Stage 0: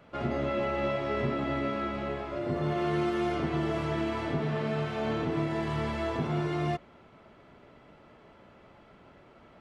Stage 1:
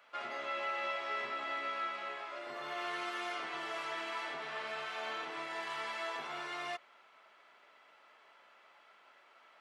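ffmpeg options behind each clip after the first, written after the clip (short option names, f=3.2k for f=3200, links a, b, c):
-af "highpass=1.1k"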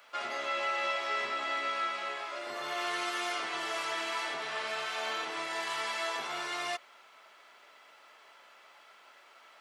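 -af "bass=f=250:g=-3,treble=f=4k:g=9,volume=4.5dB"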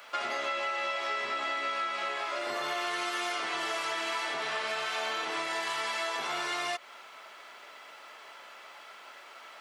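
-af "acompressor=threshold=-38dB:ratio=6,volume=8dB"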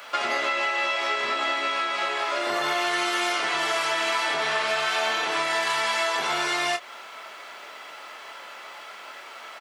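-filter_complex "[0:a]asplit=2[a][b];[b]adelay=26,volume=-9dB[c];[a][c]amix=inputs=2:normalize=0,volume=7.5dB"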